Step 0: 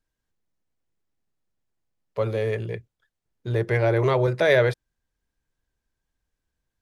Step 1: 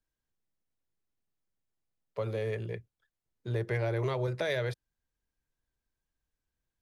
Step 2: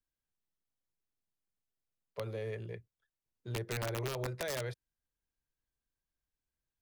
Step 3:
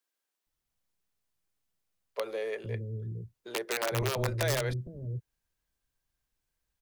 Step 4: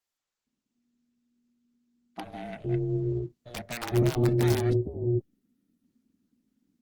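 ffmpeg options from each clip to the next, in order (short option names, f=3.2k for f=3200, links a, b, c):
-filter_complex "[0:a]acrossover=split=120|3000[a][b][c];[b]acompressor=threshold=-23dB:ratio=6[d];[a][d][c]amix=inputs=3:normalize=0,volume=-6.5dB"
-af "aeval=exprs='(mod(14.1*val(0)+1,2)-1)/14.1':c=same,volume=-6dB"
-filter_complex "[0:a]acrossover=split=300[a][b];[a]adelay=460[c];[c][b]amix=inputs=2:normalize=0,volume=7.5dB"
-af "asubboost=boost=6:cutoff=240,aeval=exprs='val(0)*sin(2*PI*240*n/s)':c=same" -ar 48000 -c:a libopus -b:a 16k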